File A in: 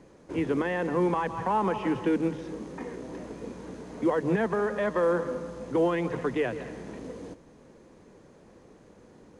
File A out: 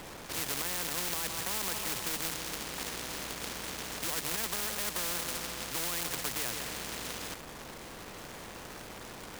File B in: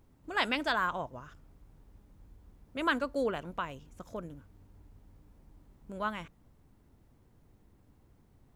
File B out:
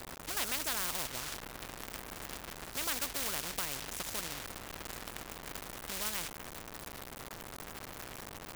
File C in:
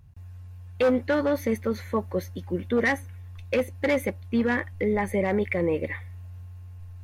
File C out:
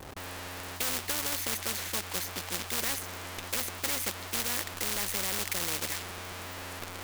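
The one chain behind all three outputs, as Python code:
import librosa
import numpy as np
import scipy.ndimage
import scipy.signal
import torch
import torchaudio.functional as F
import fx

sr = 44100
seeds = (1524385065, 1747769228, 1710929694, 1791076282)

y = fx.low_shelf(x, sr, hz=110.0, db=10.0)
y = fx.quant_companded(y, sr, bits=4)
y = fx.spectral_comp(y, sr, ratio=4.0)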